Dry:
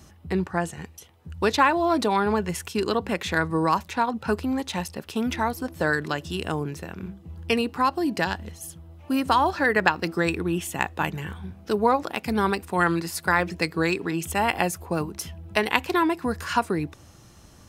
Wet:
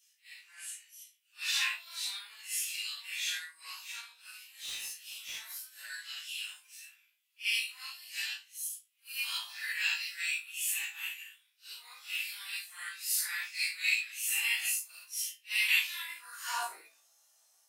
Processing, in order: phase scrambler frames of 0.2 s; differentiator; in parallel at -3.5 dB: soft clip -29 dBFS, distortion -18 dB; on the sum: high-pass sweep 2500 Hz -> 640 Hz, 15.99–16.75; 4.48–5.41 hard clip -31.5 dBFS, distortion -26 dB; on a send: flutter echo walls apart 3.1 m, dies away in 0.25 s; on the sum: upward expander 1.5:1, over -49 dBFS; gain -1.5 dB

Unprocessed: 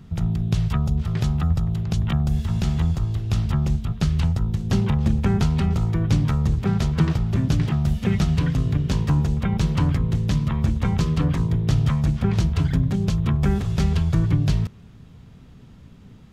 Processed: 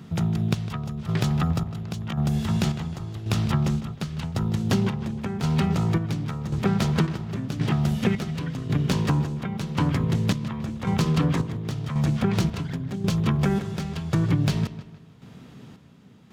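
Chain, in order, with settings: tracing distortion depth 0.039 ms; HPF 160 Hz 12 dB/oct; compressor 4:1, threshold -24 dBFS, peak gain reduction 7 dB; chopper 0.92 Hz, depth 60%, duty 50%; on a send: darkening echo 0.155 s, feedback 42%, low-pass 4800 Hz, level -13.5 dB; on the sum: gain +5.5 dB

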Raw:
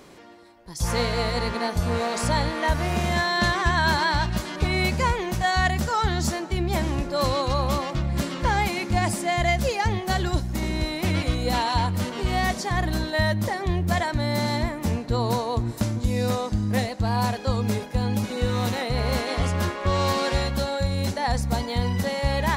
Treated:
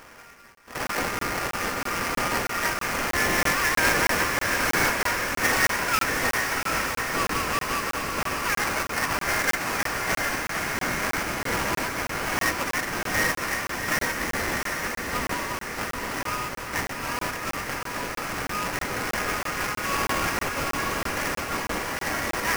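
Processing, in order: Chebyshev high-pass 1200 Hz, order 4; in parallel at -1 dB: compressor, threshold -40 dBFS, peak gain reduction 17 dB; on the sum: sample-rate reducer 3800 Hz, jitter 20%; diffused feedback echo 0.778 s, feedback 60%, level -3.5 dB; on a send at -13.5 dB: reverb RT60 0.35 s, pre-delay 4 ms; on the sum: crackling interface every 0.32 s, samples 1024, zero, from 0.55; gain +2 dB

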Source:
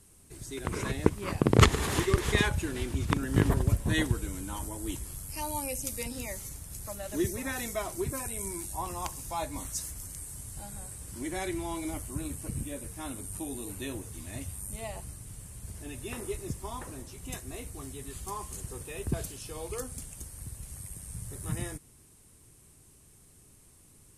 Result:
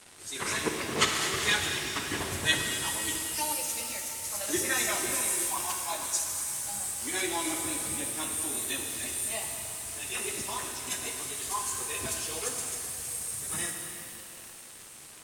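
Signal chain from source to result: HPF 46 Hz 24 dB/oct; tilt +4.5 dB/oct; AGC gain up to 7 dB; plain phase-vocoder stretch 0.63×; crackle 320/s -35 dBFS; air absorption 67 m; shimmer reverb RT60 2.8 s, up +7 st, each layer -8 dB, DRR 2.5 dB

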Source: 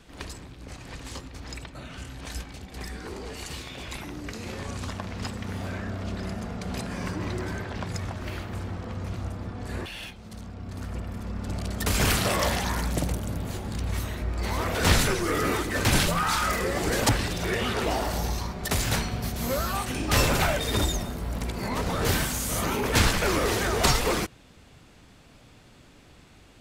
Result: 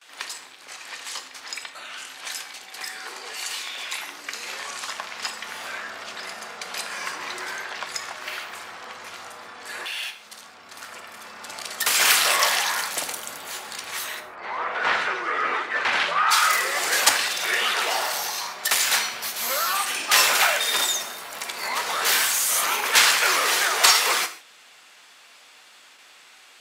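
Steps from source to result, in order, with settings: 14.19–16.3 LPF 1400 Hz -> 2500 Hz 12 dB/oct; gate with hold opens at -44 dBFS; HPF 1100 Hz 12 dB/oct; non-linear reverb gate 0.18 s falling, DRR 8 dB; gain +8.5 dB

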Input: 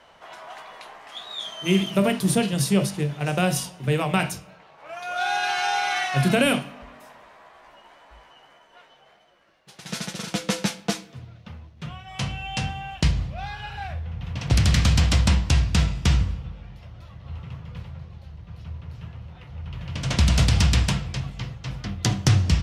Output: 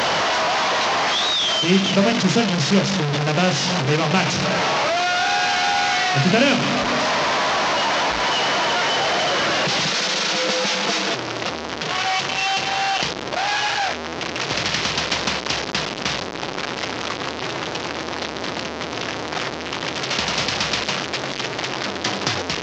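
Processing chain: delta modulation 32 kbps, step -17 dBFS; HPF 130 Hz 12 dB/oct, from 9.89 s 340 Hz; gain +3.5 dB

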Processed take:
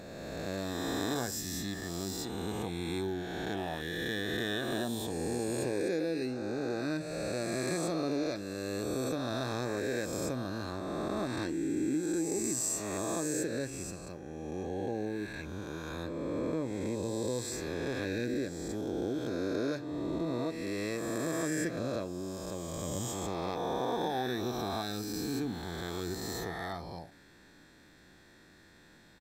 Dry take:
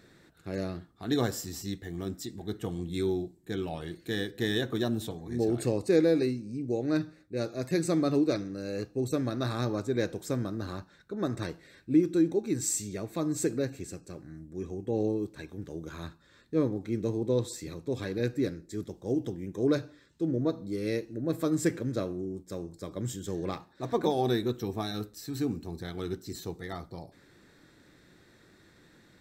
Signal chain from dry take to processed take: spectral swells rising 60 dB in 2.51 s; bell 120 Hz -6 dB 0.97 oct; comb 1.2 ms, depth 30%; compressor 3:1, threshold -28 dBFS, peak gain reduction 7.5 dB; gain -2.5 dB

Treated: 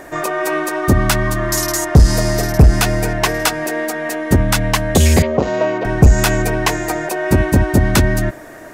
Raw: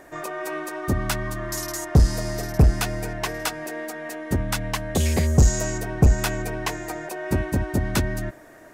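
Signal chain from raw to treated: 5.22–5.85 speaker cabinet 290–3200 Hz, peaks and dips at 560 Hz +6 dB, 1000 Hz +4 dB, 1700 Hz -7 dB; maximiser +12.5 dB; gain -1 dB

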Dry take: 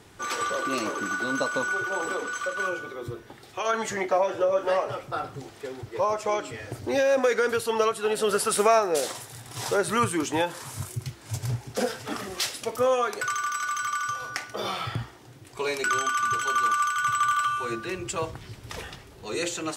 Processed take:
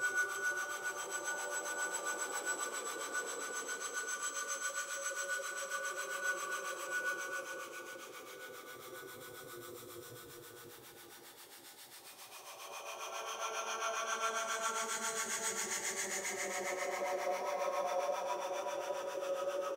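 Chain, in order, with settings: RIAA curve recording; Paulstretch 7.3×, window 0.50 s, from 1.75; harmonic tremolo 7.4 Hz, depth 70%, crossover 720 Hz; frequency-shifting echo 0.12 s, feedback 60%, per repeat -60 Hz, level -19 dB; mismatched tape noise reduction encoder only; gain -8.5 dB

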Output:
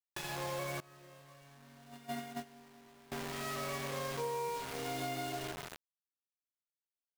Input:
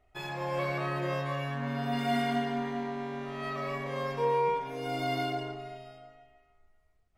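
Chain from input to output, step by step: requantised 6-bit, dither none; 0.8–3.12 gate -26 dBFS, range -24 dB; compressor 3:1, threshold -36 dBFS, peak gain reduction 9.5 dB; gain -1.5 dB

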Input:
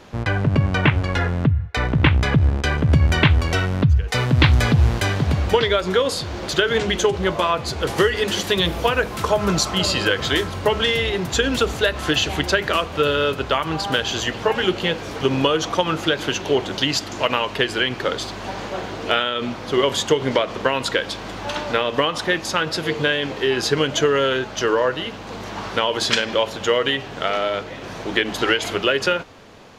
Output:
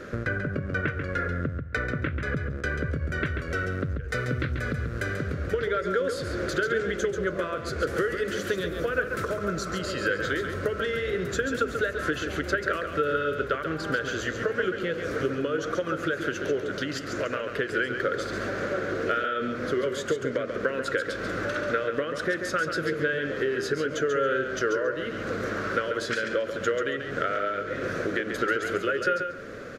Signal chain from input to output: bell 210 Hz +3 dB 2.9 oct; compressor 6:1, threshold -30 dBFS, peak gain reduction 20.5 dB; EQ curve 200 Hz 0 dB, 550 Hz +7 dB, 880 Hz -16 dB, 1400 Hz +12 dB, 2900 Hz -6 dB, 6600 Hz -2 dB; feedback echo 0.138 s, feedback 17%, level -7 dB

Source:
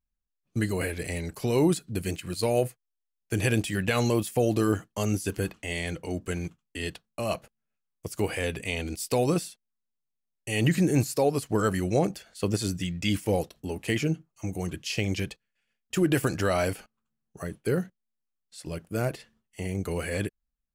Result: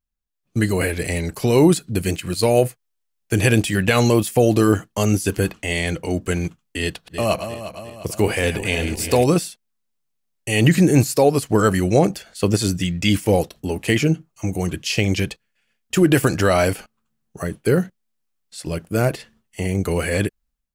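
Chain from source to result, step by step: 6.84–9.24 regenerating reverse delay 0.177 s, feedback 70%, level -9.5 dB; AGC gain up to 9.5 dB

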